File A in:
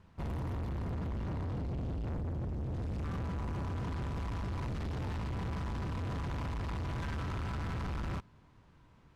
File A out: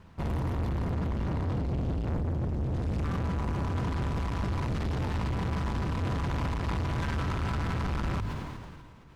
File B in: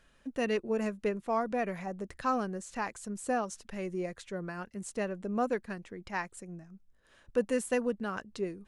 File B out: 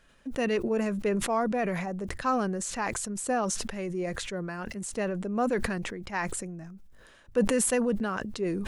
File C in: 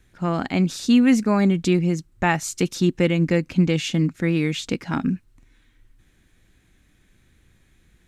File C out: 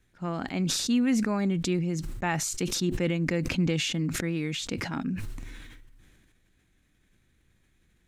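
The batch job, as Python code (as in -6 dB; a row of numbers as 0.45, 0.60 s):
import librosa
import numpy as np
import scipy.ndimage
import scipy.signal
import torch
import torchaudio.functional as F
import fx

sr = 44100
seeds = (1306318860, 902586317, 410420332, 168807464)

y = fx.hum_notches(x, sr, base_hz=50, count=2)
y = fx.sustainer(y, sr, db_per_s=29.0)
y = y * 10.0 ** (-30 / 20.0) / np.sqrt(np.mean(np.square(y)))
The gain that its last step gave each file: +6.5, +2.5, -9.0 dB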